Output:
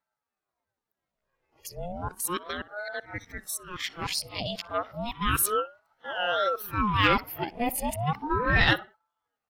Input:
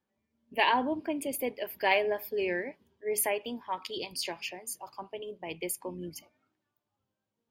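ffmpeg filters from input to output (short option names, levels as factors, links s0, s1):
-filter_complex "[0:a]areverse,atempo=0.79,acontrast=80,agate=range=0.447:threshold=0.00501:ratio=16:detection=peak,asplit=2[s0][s1];[s1]adelay=61,lowpass=f=1900:p=1,volume=0.112,asplit=2[s2][s3];[s3]adelay=61,lowpass=f=1900:p=1,volume=0.34,asplit=2[s4][s5];[s5]adelay=61,lowpass=f=1900:p=1,volume=0.34[s6];[s0][s2][s4][s6]amix=inputs=4:normalize=0,aeval=exprs='val(0)*sin(2*PI*670*n/s+670*0.65/0.33*sin(2*PI*0.33*n/s))':c=same"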